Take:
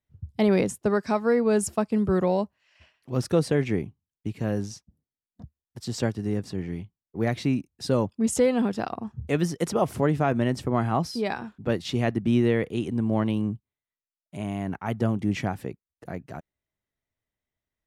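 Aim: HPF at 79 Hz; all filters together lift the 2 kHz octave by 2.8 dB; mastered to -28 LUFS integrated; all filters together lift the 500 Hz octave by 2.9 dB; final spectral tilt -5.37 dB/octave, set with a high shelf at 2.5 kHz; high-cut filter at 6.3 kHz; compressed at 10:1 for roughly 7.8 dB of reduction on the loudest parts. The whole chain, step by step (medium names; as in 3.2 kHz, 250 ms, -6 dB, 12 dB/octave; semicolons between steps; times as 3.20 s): high-pass 79 Hz; low-pass 6.3 kHz; peaking EQ 500 Hz +3.5 dB; peaking EQ 2 kHz +7 dB; treble shelf 2.5 kHz -8.5 dB; compression 10:1, threshold -22 dBFS; trim +1.5 dB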